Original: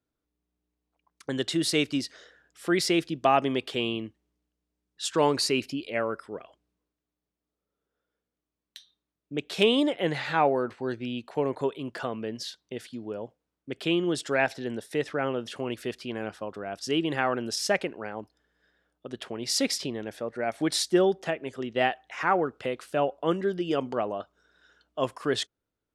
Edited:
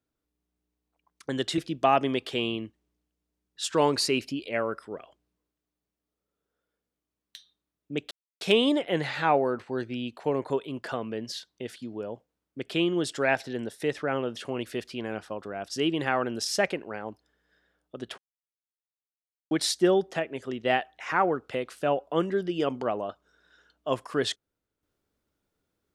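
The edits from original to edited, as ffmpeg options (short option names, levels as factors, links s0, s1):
-filter_complex "[0:a]asplit=5[s0][s1][s2][s3][s4];[s0]atrim=end=1.582[s5];[s1]atrim=start=2.988:end=9.52,asetpts=PTS-STARTPTS,afade=t=out:st=6.528:d=0.004:c=hsin,apad=pad_dur=0.3[s6];[s2]atrim=start=9.52:end=19.29,asetpts=PTS-STARTPTS,afade=t=in:d=0.004:c=hsin,afade=t=out:st=9.766:d=0.004:c=hsin[s7];[s3]atrim=start=19.29:end=20.62,asetpts=PTS-STARTPTS,volume=0[s8];[s4]atrim=start=20.62,asetpts=PTS-STARTPTS,afade=t=in:d=0.004:c=hsin[s9];[s6][s7][s8][s9]concat=n=4:v=0:a=1[s10];[s5][s10]acrossfade=d=0.004:c1=hsin:c2=hsin"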